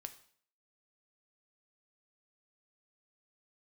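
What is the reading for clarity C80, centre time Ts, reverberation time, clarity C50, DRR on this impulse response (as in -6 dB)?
17.0 dB, 7 ms, 0.55 s, 13.5 dB, 8.0 dB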